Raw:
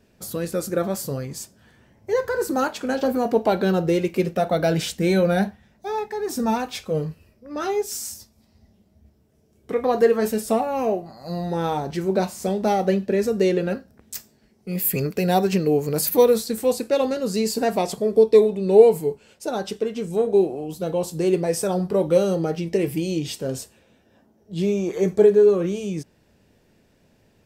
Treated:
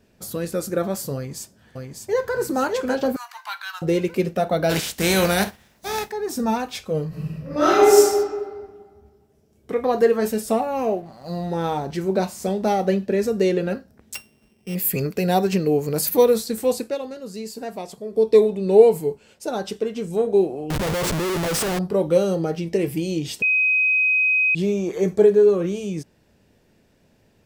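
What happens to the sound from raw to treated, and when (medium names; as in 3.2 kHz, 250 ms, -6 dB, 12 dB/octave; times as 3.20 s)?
1.15–2.35 s: echo throw 600 ms, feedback 40%, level -4 dB
3.16–3.82 s: steep high-pass 1 kHz 48 dB/octave
4.69–6.10 s: spectral contrast reduction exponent 0.56
7.08–7.97 s: reverb throw, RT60 1.6 s, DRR -11.5 dB
10.78–11.88 s: hysteresis with a dead band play -47.5 dBFS
14.15–14.75 s: sorted samples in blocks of 16 samples
16.79–18.31 s: dip -10 dB, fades 0.21 s
20.70–21.79 s: Schmitt trigger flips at -35.5 dBFS
23.42–24.55 s: bleep 2.52 kHz -15.5 dBFS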